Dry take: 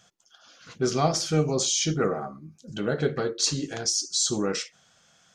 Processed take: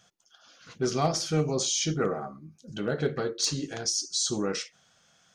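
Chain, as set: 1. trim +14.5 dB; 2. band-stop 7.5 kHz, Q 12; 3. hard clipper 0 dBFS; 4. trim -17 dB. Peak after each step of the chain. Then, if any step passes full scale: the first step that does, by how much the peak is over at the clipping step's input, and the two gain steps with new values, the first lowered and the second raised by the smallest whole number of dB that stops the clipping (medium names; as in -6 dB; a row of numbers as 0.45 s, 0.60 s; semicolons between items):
+4.0 dBFS, +4.0 dBFS, 0.0 dBFS, -17.0 dBFS; step 1, 4.0 dB; step 1 +10.5 dB, step 4 -13 dB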